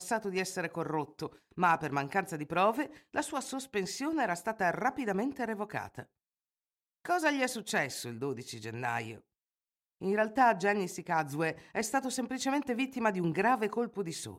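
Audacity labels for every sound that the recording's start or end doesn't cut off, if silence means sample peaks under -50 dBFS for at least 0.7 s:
7.050000	9.180000	sound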